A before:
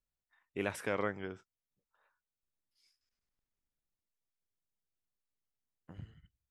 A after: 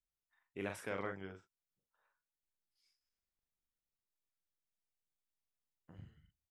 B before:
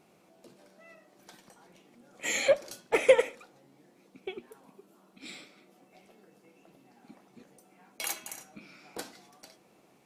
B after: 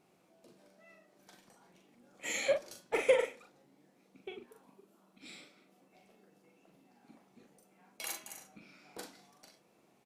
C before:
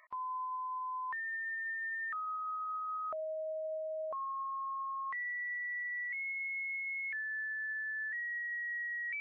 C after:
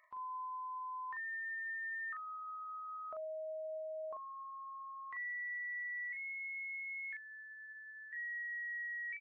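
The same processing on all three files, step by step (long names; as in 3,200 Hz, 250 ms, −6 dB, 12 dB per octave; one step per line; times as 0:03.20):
double-tracking delay 41 ms −5 dB
level −7 dB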